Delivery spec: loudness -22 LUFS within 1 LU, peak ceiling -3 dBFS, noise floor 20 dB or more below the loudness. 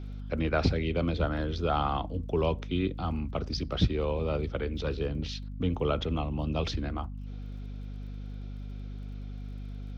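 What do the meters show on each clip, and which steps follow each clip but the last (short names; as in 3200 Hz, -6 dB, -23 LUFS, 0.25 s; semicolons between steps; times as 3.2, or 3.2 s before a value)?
ticks 27/s; hum 50 Hz; harmonics up to 250 Hz; hum level -36 dBFS; loudness -32.0 LUFS; peak -10.5 dBFS; loudness target -22.0 LUFS
-> de-click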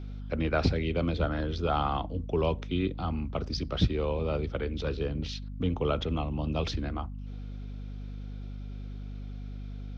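ticks 0/s; hum 50 Hz; harmonics up to 250 Hz; hum level -36 dBFS
-> notches 50/100/150/200/250 Hz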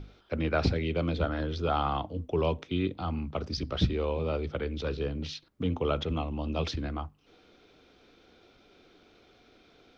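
hum none; loudness -31.5 LUFS; peak -11.5 dBFS; loudness target -22.0 LUFS
-> gain +9.5 dB; limiter -3 dBFS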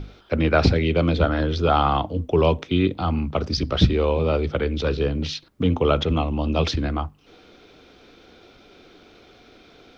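loudness -22.0 LUFS; peak -3.0 dBFS; noise floor -52 dBFS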